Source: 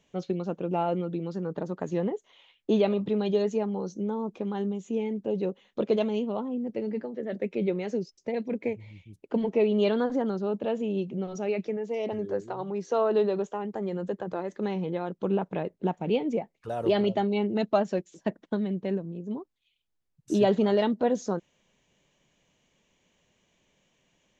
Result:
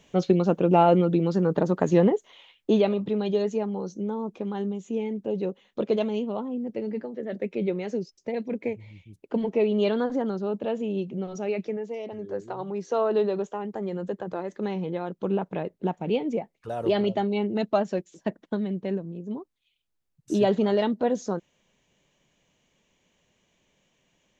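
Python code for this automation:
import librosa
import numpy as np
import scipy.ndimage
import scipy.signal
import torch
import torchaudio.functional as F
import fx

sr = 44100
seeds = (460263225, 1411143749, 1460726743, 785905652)

y = fx.gain(x, sr, db=fx.line((2.02, 9.5), (2.97, 0.5), (11.79, 0.5), (12.09, -6.0), (12.5, 0.5)))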